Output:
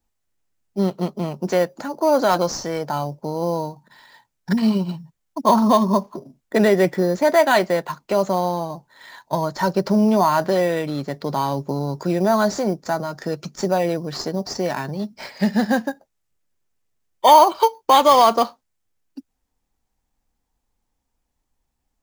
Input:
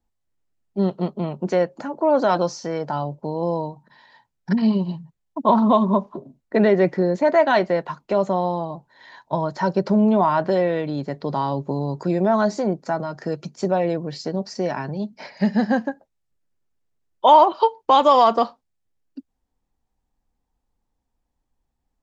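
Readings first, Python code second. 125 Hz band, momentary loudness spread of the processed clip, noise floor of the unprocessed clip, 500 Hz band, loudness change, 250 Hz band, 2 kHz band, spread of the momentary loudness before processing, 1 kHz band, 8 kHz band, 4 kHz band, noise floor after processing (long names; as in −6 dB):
+0.5 dB, 12 LU, −76 dBFS, +0.5 dB, +1.0 dB, +0.5 dB, +3.0 dB, 12 LU, +1.5 dB, can't be measured, +5.0 dB, −76 dBFS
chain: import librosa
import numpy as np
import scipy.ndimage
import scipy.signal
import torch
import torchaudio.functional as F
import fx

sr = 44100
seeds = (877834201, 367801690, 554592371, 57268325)

p1 = fx.high_shelf(x, sr, hz=2300.0, db=11.5)
p2 = fx.sample_hold(p1, sr, seeds[0], rate_hz=5400.0, jitter_pct=0)
p3 = p1 + (p2 * 10.0 ** (-7.0 / 20.0))
y = p3 * 10.0 ** (-3.0 / 20.0)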